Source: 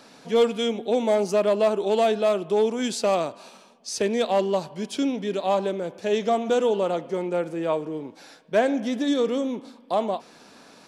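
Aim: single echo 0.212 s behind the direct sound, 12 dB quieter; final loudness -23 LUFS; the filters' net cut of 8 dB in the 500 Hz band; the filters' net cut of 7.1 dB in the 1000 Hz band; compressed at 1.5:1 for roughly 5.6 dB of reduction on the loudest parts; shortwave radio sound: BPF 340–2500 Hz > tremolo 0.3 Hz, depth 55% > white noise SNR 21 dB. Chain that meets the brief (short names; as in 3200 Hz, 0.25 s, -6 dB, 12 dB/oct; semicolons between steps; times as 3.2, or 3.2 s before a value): bell 500 Hz -7 dB; bell 1000 Hz -6.5 dB; compressor 1.5:1, threshold -38 dBFS; BPF 340–2500 Hz; echo 0.212 s -12 dB; tremolo 0.3 Hz, depth 55%; white noise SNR 21 dB; gain +16.5 dB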